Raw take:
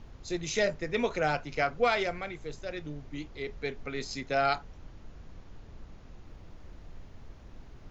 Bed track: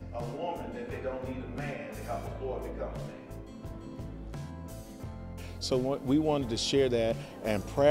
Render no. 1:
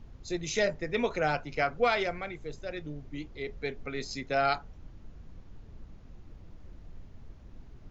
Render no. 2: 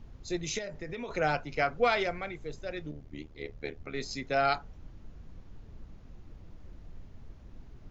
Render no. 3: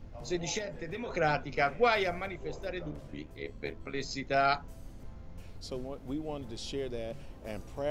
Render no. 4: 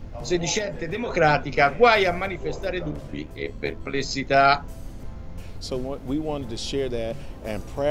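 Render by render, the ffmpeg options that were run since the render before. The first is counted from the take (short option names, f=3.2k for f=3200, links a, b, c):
-af "afftdn=nr=6:nf=-50"
-filter_complex "[0:a]asplit=3[a][b][c];[a]afade=t=out:st=0.57:d=0.02[d];[b]acompressor=threshold=-34dB:ratio=12:attack=3.2:release=140:knee=1:detection=peak,afade=t=in:st=0.57:d=0.02,afade=t=out:st=1.08:d=0.02[e];[c]afade=t=in:st=1.08:d=0.02[f];[d][e][f]amix=inputs=3:normalize=0,asettb=1/sr,asplit=3[g][h][i];[g]atrim=end=2.914[j];[h]atrim=start=2.91:end=3.94,asetpts=PTS-STARTPTS,afade=t=in:d=0.004:c=qsin,afade=t=out:st=1.026:d=0.004:c=qsin,tremolo=f=75:d=0.919[k];[i]atrim=start=3.936[l];[j][k]acrossfade=d=0.004:c1=hsin:c2=qsin[m];[m][l]acrossfade=d=0.004:c1=qsin:c2=hsin"
-filter_complex "[1:a]volume=-10.5dB[a];[0:a][a]amix=inputs=2:normalize=0"
-af "volume=10dB"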